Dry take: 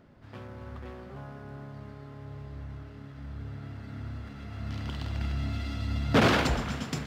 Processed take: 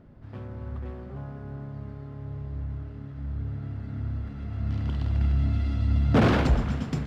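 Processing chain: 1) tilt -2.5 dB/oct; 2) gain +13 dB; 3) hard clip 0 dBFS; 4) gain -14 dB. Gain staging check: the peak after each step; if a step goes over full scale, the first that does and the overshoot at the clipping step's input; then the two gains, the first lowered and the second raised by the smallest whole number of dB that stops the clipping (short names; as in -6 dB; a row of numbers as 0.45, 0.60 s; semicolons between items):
-6.5, +6.5, 0.0, -14.0 dBFS; step 2, 6.5 dB; step 2 +6 dB, step 4 -7 dB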